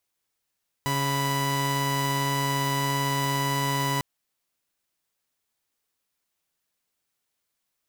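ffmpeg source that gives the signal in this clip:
-f lavfi -i "aevalsrc='0.0631*((2*mod(138.59*t,1)-1)+(2*mod(987.77*t,1)-1))':d=3.15:s=44100"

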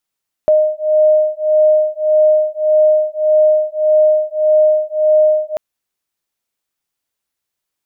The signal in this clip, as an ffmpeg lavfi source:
-f lavfi -i "aevalsrc='0.237*(sin(2*PI*615*t)+sin(2*PI*616.7*t))':d=5.09:s=44100"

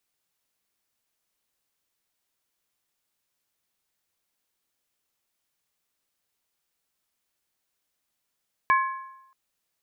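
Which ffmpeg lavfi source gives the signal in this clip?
-f lavfi -i "aevalsrc='0.158*pow(10,-3*t/0.88)*sin(2*PI*1060*t)+0.0891*pow(10,-3*t/0.697)*sin(2*PI*1689.6*t)+0.0501*pow(10,-3*t/0.602)*sin(2*PI*2264.2*t)':d=0.63:s=44100"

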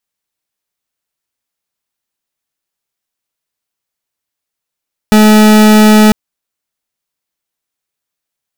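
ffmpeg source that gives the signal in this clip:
-f lavfi -i "aevalsrc='0.596*(2*lt(mod(214*t,1),0.4)-1)':d=1:s=44100"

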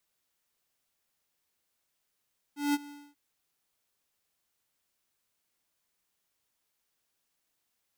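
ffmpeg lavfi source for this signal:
-f lavfi -i "aevalsrc='0.0531*(2*lt(mod(289*t,1),0.5)-1)':d=0.588:s=44100,afade=t=in:d=0.18,afade=t=out:st=0.18:d=0.034:silence=0.0944,afade=t=out:st=0.33:d=0.258"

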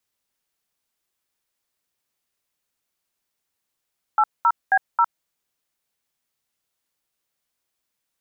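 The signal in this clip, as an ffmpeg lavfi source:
-f lavfi -i "aevalsrc='0.158*clip(min(mod(t,0.269),0.058-mod(t,0.269))/0.002,0,1)*(eq(floor(t/0.269),0)*(sin(2*PI*852*mod(t,0.269))+sin(2*PI*1336*mod(t,0.269)))+eq(floor(t/0.269),1)*(sin(2*PI*941*mod(t,0.269))+sin(2*PI*1336*mod(t,0.269)))+eq(floor(t/0.269),2)*(sin(2*PI*770*mod(t,0.269))+sin(2*PI*1633*mod(t,0.269)))+eq(floor(t/0.269),3)*(sin(2*PI*941*mod(t,0.269))+sin(2*PI*1336*mod(t,0.269))))':d=1.076:s=44100"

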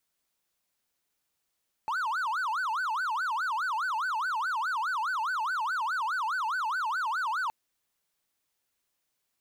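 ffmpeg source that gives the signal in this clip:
-f lavfi -i "aevalsrc='0.0531*(1-4*abs(mod((1195.5*t-334.5/(2*PI*4.8)*sin(2*PI*4.8*t))+0.25,1)-0.5))':d=5.62:s=44100"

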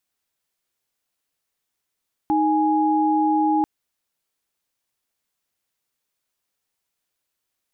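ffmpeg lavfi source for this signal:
-f lavfi -i "aevalsrc='0.112*(sin(2*PI*311.13*t)+sin(2*PI*830.61*t))':d=1.34:s=44100"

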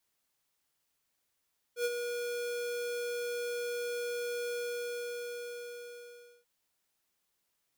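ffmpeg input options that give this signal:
-f lavfi -i "aevalsrc='0.0335*(2*lt(mod(481*t,1),0.5)-1)':d=4.69:s=44100,afade=t=in:d=0.089,afade=t=out:st=0.089:d=0.041:silence=0.473,afade=t=out:st=2.78:d=1.91"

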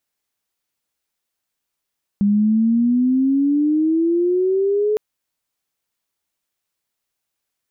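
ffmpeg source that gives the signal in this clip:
-f lavfi -i "aevalsrc='pow(10,(-12.5-2.5*t/2.76)/20)*sin(2*PI*200*2.76/log(430/200)*(exp(log(430/200)*t/2.76)-1))':d=2.76:s=44100"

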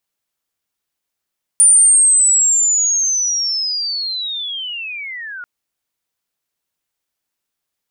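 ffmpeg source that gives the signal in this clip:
-f lavfi -i "aevalsrc='pow(10,(-5.5-21.5*t/3.84)/20)*sin(2*PI*(9300*t-7900*t*t/(2*3.84)))':d=3.84:s=44100"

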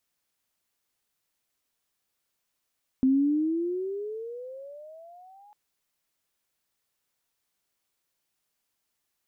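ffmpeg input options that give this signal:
-f lavfi -i "aevalsrc='pow(10,(-17.5-33.5*t/2.5)/20)*sin(2*PI*258*2.5/(20.5*log(2)/12)*(exp(20.5*log(2)/12*t/2.5)-1))':d=2.5:s=44100"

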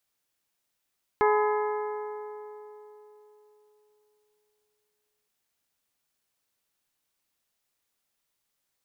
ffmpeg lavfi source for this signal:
-f lavfi -i "aevalsrc='0.0944*pow(10,-3*t/3.75)*sin(2*PI*422*t)+0.0668*pow(10,-3*t/3.046)*sin(2*PI*844*t)+0.0473*pow(10,-3*t/2.884)*sin(2*PI*1012.8*t)+0.0335*pow(10,-3*t/2.697)*sin(2*PI*1266*t)+0.0237*pow(10,-3*t/2.474)*sin(2*PI*1688*t)+0.0168*pow(10,-3*t/2.314)*sin(2*PI*2110*t)':d=4.07:s=44100"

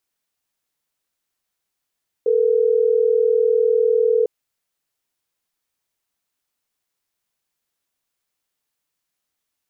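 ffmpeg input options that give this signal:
-f lavfi -i "aevalsrc='0.15*(sin(2*PI*440*t)+sin(2*PI*480*t))*clip(min(mod(t,6),2-mod(t,6))/0.005,0,1)':d=3.12:s=44100"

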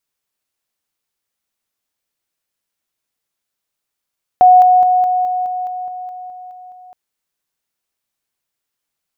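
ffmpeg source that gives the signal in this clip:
-f lavfi -i "aevalsrc='pow(10,(-3.5-3*floor(t/0.21))/20)*sin(2*PI*732*t)':d=2.52:s=44100"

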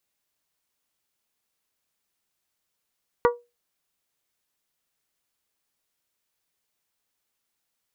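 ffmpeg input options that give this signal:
-f lavfi -i "aevalsrc='0.224*pow(10,-3*t/0.24)*sin(2*PI*480*t)+0.15*pow(10,-3*t/0.148)*sin(2*PI*960*t)+0.1*pow(10,-3*t/0.13)*sin(2*PI*1152*t)+0.0668*pow(10,-3*t/0.111)*sin(2*PI*1440*t)+0.0447*pow(10,-3*t/0.091)*sin(2*PI*1920*t)':d=0.89:s=44100"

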